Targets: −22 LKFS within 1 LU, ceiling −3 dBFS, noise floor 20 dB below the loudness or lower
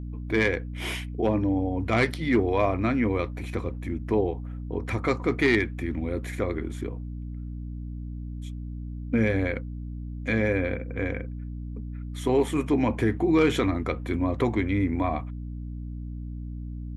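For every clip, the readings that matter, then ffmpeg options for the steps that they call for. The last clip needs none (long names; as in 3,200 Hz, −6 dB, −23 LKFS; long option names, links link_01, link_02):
mains hum 60 Hz; hum harmonics up to 300 Hz; level of the hum −32 dBFS; integrated loudness −27.5 LKFS; sample peak −10.0 dBFS; target loudness −22.0 LKFS
→ -af "bandreject=frequency=60:width_type=h:width=6,bandreject=frequency=120:width_type=h:width=6,bandreject=frequency=180:width_type=h:width=6,bandreject=frequency=240:width_type=h:width=6,bandreject=frequency=300:width_type=h:width=6"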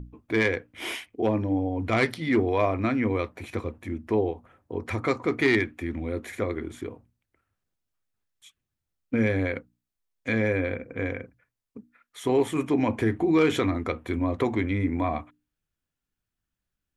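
mains hum none found; integrated loudness −27.0 LKFS; sample peak −10.5 dBFS; target loudness −22.0 LKFS
→ -af "volume=5dB"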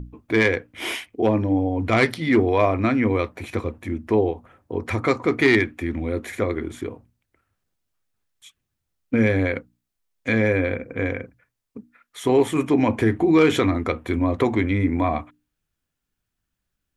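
integrated loudness −22.0 LKFS; sample peak −5.5 dBFS; background noise floor −81 dBFS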